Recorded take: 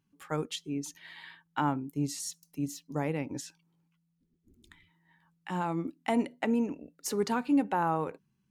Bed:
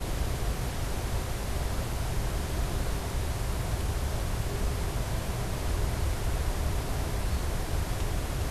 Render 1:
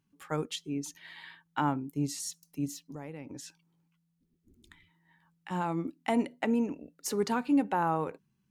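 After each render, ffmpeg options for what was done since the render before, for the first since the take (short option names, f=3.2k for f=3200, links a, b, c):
-filter_complex "[0:a]asettb=1/sr,asplit=3[a][b][c];[a]atrim=end=2.834[d];[b]atrim=start=2.83:end=5.51,asetpts=PTS-STARTPTS,afade=t=in:d=0.004:c=qsin,afade=t=out:st=2.676:d=0.004:c=qsin,acompressor=threshold=-40dB:ratio=4:attack=3.2:release=140:knee=1:detection=peak[e];[c]atrim=start=5.506[f];[d][e]acrossfade=d=0.004:c1=hsin:c2=qsin[g];[g][f]acrossfade=d=0.004:c1=qsin:c2=hsin"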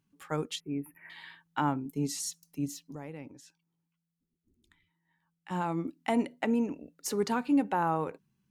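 -filter_complex "[0:a]asettb=1/sr,asplit=3[a][b][c];[a]atrim=end=0.604[d];[b]atrim=start=0.6:end=1.1,asetpts=PTS-STARTPTS,afade=t=in:d=0.004:c=qsin,afade=t=out:st=0.496:d=0.004:c=qsin,asuperstop=centerf=5300:order=20:qfactor=0.7[e];[c]atrim=start=1.096[f];[d][e]acrossfade=d=0.004:c1=hsin:c2=qsin[g];[g][f]acrossfade=d=0.004:c1=qsin:c2=hsin,asettb=1/sr,asplit=3[h][i][j];[h]atrim=end=1.854[k];[i]atrim=start=1.85:end=2.3,asetpts=PTS-STARTPTS,afade=t=in:d=0.004:c=qsin,afade=t=out:st=0.446:d=0.004:c=qsin,aecho=1:1:4.6:0.75,atrim=end_sample=19845[l];[j]atrim=start=2.296[m];[k][l]acrossfade=d=0.004:c1=hsin:c2=qsin[n];[n][m]acrossfade=d=0.004:c1=qsin:c2=hsin,asplit=3[o][p][q];[o]atrim=end=3.51,asetpts=PTS-STARTPTS,afade=t=out:st=3.27:d=0.24:c=exp:silence=0.334965[r];[p]atrim=start=3.51:end=5.26,asetpts=PTS-STARTPTS,volume=-9.5dB[s];[q]atrim=start=5.26,asetpts=PTS-STARTPTS,afade=t=in:d=0.24:c=exp:silence=0.334965[t];[r][s][t]concat=n=3:v=0:a=1"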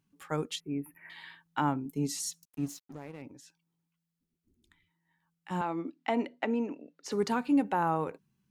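-filter_complex "[0:a]asettb=1/sr,asplit=3[a][b][c];[a]atrim=end=2.454[d];[b]atrim=start=2.45:end=3.22,asetpts=PTS-STARTPTS,afade=t=in:d=0.004:c=qsin,afade=t=out:st=0.766:d=0.004:c=qsin,aeval=exprs='sgn(val(0))*max(abs(val(0))-0.00251,0)':c=same[e];[c]atrim=start=3.216[f];[d][e]acrossfade=d=0.004:c1=hsin:c2=qsin[g];[g][f]acrossfade=d=0.004:c1=qsin:c2=hsin,asettb=1/sr,asplit=3[h][i][j];[h]atrim=end=5.614[k];[i]atrim=start=5.61:end=7.12,asetpts=PTS-STARTPTS,afade=t=in:d=0.004:c=qsin,afade=t=out:st=1.506:d=0.004:c=qsin,acrossover=split=200 5700:gain=0.0708 1 0.0708[l][m][n];[l][m][n]amix=inputs=3:normalize=0[o];[j]atrim=start=7.116[p];[k][o]acrossfade=d=0.004:c1=hsin:c2=qsin[q];[q][p]acrossfade=d=0.004:c1=qsin:c2=hsin"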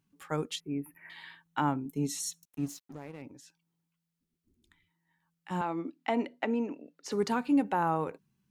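-filter_complex "[0:a]asettb=1/sr,asplit=3[a][b][c];[a]atrim=end=1.444[d];[b]atrim=start=1.44:end=2.59,asetpts=PTS-STARTPTS,afade=t=in:d=0.004:c=qsin,afade=t=out:st=1.146:d=0.004:c=qsin,asuperstop=centerf=4800:order=4:qfactor=7.7[e];[c]atrim=start=2.586[f];[d][e]acrossfade=d=0.004:c1=hsin:c2=qsin[g];[g][f]acrossfade=d=0.004:c1=qsin:c2=hsin"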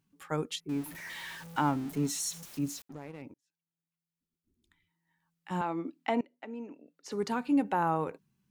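-filter_complex "[0:a]asettb=1/sr,asplit=3[a][b][c];[a]atrim=end=0.694[d];[b]atrim=start=0.69:end=2.82,asetpts=PTS-STARTPTS,afade=t=in:d=0.004:c=qsin,afade=t=out:st=2.126:d=0.004:c=qsin,aeval=exprs='val(0)+0.5*0.00891*sgn(val(0))':c=same[e];[c]atrim=start=2.816[f];[d][e]acrossfade=d=0.004:c1=hsin:c2=qsin[g];[g][f]acrossfade=d=0.004:c1=qsin:c2=hsin,asplit=3[h][i][j];[h]atrim=end=3.34,asetpts=PTS-STARTPTS,afade=t=out:st=3.336:d=0.004:c=hsin[k];[i]atrim=start=3.34:end=6.21,asetpts=PTS-STARTPTS,afade=t=in:d=2.18,afade=t=out:st=2.866:d=0.004:c=hsin:silence=0.0794328[l];[j]atrim=start=6.21,asetpts=PTS-STARTPTS,afade=t=in:d=1.5:silence=0.0794328[m];[k][l][m]concat=n=3:v=0:a=1"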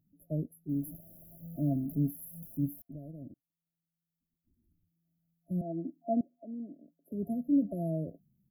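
-af "afftfilt=real='re*(1-between(b*sr/4096,690,11000))':imag='im*(1-between(b*sr/4096,690,11000))':win_size=4096:overlap=0.75,aecho=1:1:1.1:0.77"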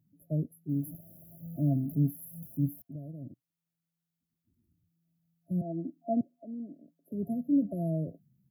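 -af "highpass=79,equalizer=f=120:t=o:w=0.83:g=7"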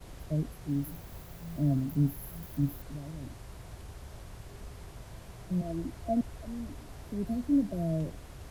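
-filter_complex "[1:a]volume=-15.5dB[a];[0:a][a]amix=inputs=2:normalize=0"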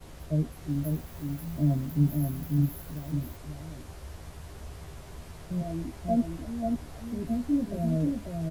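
-filter_complex "[0:a]asplit=2[a][b];[b]adelay=13,volume=-4.5dB[c];[a][c]amix=inputs=2:normalize=0,aecho=1:1:539:0.631"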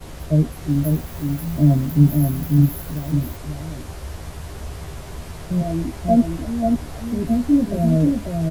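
-af "volume=10.5dB"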